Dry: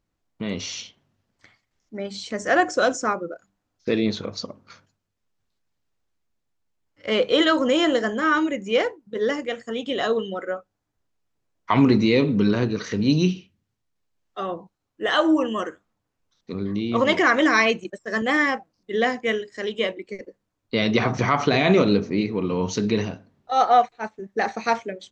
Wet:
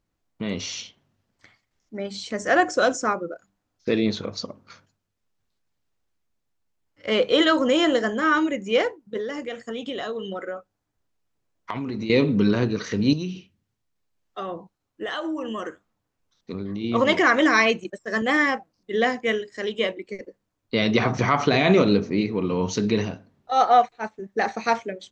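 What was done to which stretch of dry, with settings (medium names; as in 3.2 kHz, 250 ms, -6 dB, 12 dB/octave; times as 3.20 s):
9.20–12.10 s: compression 10:1, threshold -26 dBFS
13.13–16.84 s: compression, threshold -26 dBFS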